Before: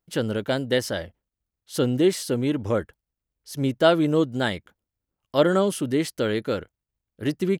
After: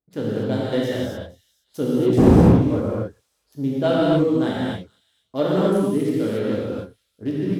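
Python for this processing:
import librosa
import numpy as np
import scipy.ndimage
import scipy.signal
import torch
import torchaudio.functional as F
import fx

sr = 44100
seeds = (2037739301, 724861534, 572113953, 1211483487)

p1 = fx.wiener(x, sr, points=15)
p2 = fx.dmg_wind(p1, sr, seeds[0], corner_hz=340.0, level_db=-20.0, at=(2.17, 2.74), fade=0.02)
p3 = scipy.signal.sosfilt(scipy.signal.butter(2, 73.0, 'highpass', fs=sr, output='sos'), p2)
p4 = fx.peak_eq(p3, sr, hz=1900.0, db=-7.5, octaves=2.4)
p5 = p4 + fx.echo_wet_highpass(p4, sr, ms=468, feedback_pct=35, hz=5200.0, wet_db=-18.0, dry=0)
p6 = fx.rev_gated(p5, sr, seeds[1], gate_ms=310, shape='flat', drr_db=-7.0)
p7 = np.clip(p6, -10.0 ** (-10.5 / 20.0), 10.0 ** (-10.5 / 20.0))
p8 = p6 + (p7 * 10.0 ** (-5.0 / 20.0))
p9 = fx.peak_eq(p8, sr, hz=7800.0, db=-5.5, octaves=1.2)
y = p9 * 10.0 ** (-7.0 / 20.0)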